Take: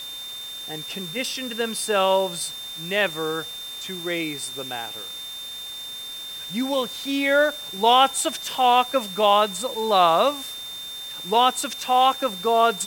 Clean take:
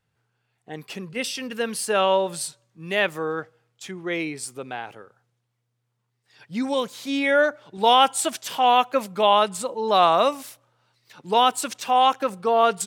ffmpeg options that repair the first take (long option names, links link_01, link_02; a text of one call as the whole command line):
ffmpeg -i in.wav -af "adeclick=threshold=4,bandreject=frequency=3600:width=30,afwtdn=0.0079" out.wav